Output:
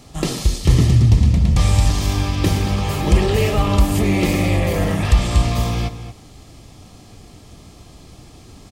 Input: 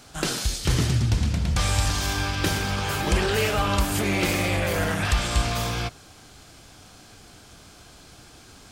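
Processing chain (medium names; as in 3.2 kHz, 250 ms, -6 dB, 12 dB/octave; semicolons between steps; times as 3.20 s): Butterworth band-stop 1.5 kHz, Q 5.1; bass shelf 470 Hz +10 dB; echo from a far wall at 39 m, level -12 dB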